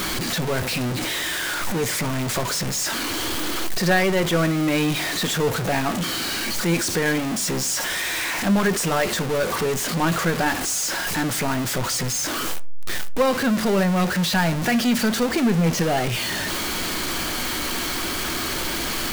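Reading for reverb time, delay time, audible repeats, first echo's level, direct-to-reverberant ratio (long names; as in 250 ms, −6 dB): 0.45 s, no echo audible, no echo audible, no echo audible, 10.0 dB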